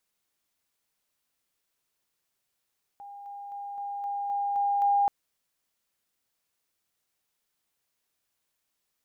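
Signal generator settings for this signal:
level staircase 807 Hz −41 dBFS, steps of 3 dB, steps 8, 0.26 s 0.00 s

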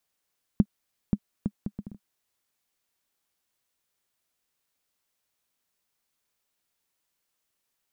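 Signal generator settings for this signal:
bouncing ball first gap 0.53 s, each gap 0.62, 204 Hz, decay 55 ms −7.5 dBFS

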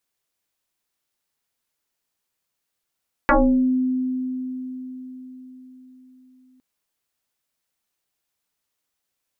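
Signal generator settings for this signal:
two-operator FM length 3.31 s, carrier 256 Hz, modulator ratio 1.11, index 6.6, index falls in 0.49 s exponential, decay 4.76 s, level −11.5 dB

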